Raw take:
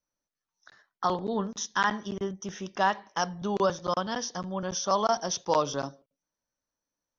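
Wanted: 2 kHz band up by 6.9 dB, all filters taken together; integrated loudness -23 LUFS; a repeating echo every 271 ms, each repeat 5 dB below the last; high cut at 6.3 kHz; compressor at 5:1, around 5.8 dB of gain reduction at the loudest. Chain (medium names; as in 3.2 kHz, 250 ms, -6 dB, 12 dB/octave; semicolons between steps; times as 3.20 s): low-pass 6.3 kHz; peaking EQ 2 kHz +9 dB; compression 5:1, threshold -24 dBFS; feedback delay 271 ms, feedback 56%, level -5 dB; trim +7 dB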